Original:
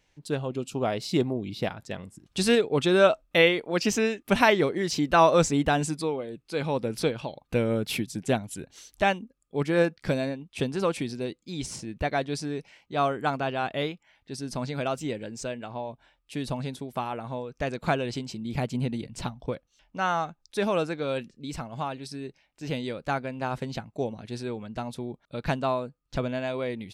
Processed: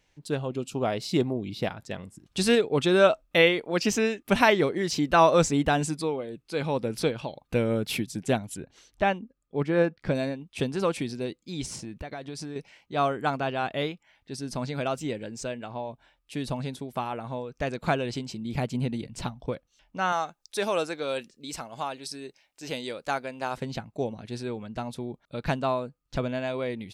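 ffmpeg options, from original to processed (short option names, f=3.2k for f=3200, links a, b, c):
-filter_complex "[0:a]asettb=1/sr,asplit=3[a][b][c];[a]atrim=end=8.574[d];[b]atrim=start=8.57:end=10.15,asetpts=PTS-STARTPTS,afade=t=in:d=0.004:c=qsin,afade=t=out:st=1.576:d=0.004:c=qsin,aemphasis=mode=reproduction:type=75kf[e];[c]atrim=start=10.146[f];[d][e]acrossfade=d=0.004:c1=hsin:c2=qsin[g];[g][f]acrossfade=d=0.004:c1=qsin:c2=hsin,asettb=1/sr,asplit=3[h][i][j];[h]atrim=end=11.714[k];[i]atrim=start=11.71:end=12.56,asetpts=PTS-STARTPTS,afade=t=in:d=0.004:c=qsin,afade=t=out:st=0.846:d=0.004:c=qsin,acompressor=threshold=-32dB:ratio=16:attack=3.2:release=140:knee=1:detection=peak[l];[j]atrim=start=12.556[m];[k][l]acrossfade=d=0.004:c1=hsin:c2=qsin[n];[n][m]acrossfade=d=0.004:c1=qsin:c2=hsin,asettb=1/sr,asplit=3[o][p][q];[o]atrim=end=20.124[r];[p]atrim=start=20.12:end=23.57,asetpts=PTS-STARTPTS,afade=t=in:d=0.004:c=qsin,afade=t=out:st=3.446:d=0.004:c=qsin,bass=f=250:g=-11,treble=f=4k:g=7[s];[q]atrim=start=23.566[t];[r][s]acrossfade=d=0.004:c1=hsin:c2=qsin[u];[u][t]acrossfade=d=0.004:c1=qsin:c2=hsin"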